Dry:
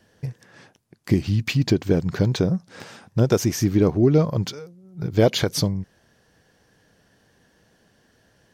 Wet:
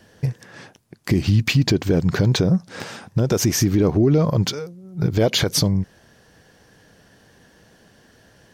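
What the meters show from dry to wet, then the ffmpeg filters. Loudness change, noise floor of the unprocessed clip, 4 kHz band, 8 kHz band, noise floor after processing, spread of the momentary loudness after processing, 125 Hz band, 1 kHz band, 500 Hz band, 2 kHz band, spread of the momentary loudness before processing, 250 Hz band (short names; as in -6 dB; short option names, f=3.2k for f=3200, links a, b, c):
+2.0 dB, -62 dBFS, +5.5 dB, +6.5 dB, -54 dBFS, 16 LU, +3.0 dB, +1.5 dB, 0.0 dB, +4.5 dB, 15 LU, +1.5 dB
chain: -af "alimiter=limit=-16dB:level=0:latency=1:release=82,volume=7.5dB"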